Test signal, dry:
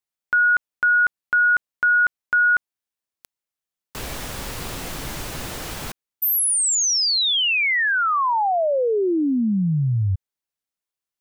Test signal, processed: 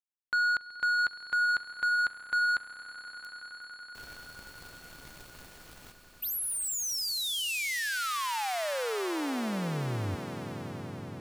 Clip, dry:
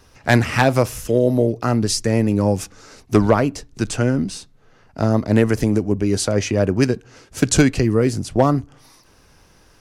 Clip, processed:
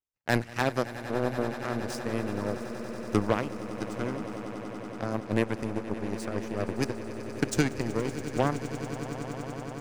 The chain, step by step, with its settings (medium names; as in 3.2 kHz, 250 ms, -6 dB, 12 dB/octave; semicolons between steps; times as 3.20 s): power-law waveshaper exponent 2; echo with a slow build-up 94 ms, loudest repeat 8, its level -16.5 dB; trim -8.5 dB